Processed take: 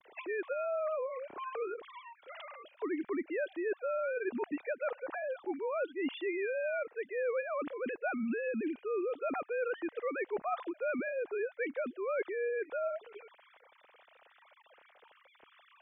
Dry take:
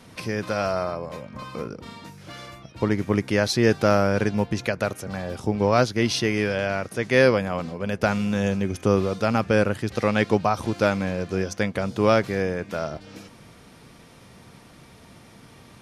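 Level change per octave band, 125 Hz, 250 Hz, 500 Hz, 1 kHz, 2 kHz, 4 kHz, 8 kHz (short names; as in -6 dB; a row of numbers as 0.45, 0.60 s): under -35 dB, -15.0 dB, -10.5 dB, -13.0 dB, -11.5 dB, -23.0 dB, under -40 dB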